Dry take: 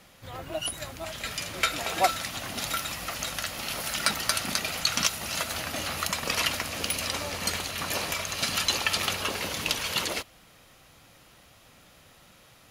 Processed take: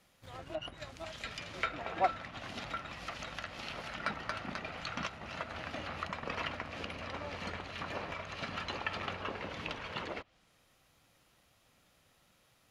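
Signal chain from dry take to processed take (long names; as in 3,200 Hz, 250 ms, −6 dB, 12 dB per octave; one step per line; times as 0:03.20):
mu-law and A-law mismatch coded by A
treble cut that deepens with the level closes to 1,900 Hz, closed at −29 dBFS
level −5 dB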